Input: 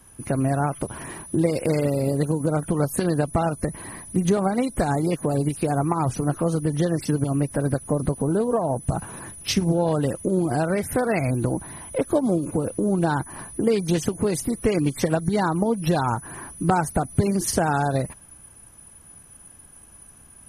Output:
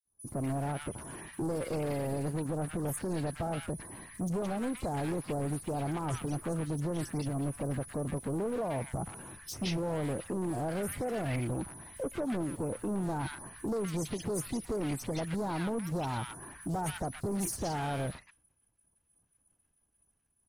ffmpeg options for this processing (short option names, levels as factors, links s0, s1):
-filter_complex "[0:a]asoftclip=type=hard:threshold=0.0708,agate=range=0.0224:threshold=0.0178:ratio=3:detection=peak,acrossover=split=1300|5400[s0][s1][s2];[s0]adelay=50[s3];[s1]adelay=170[s4];[s3][s4][s2]amix=inputs=3:normalize=0,volume=0.447"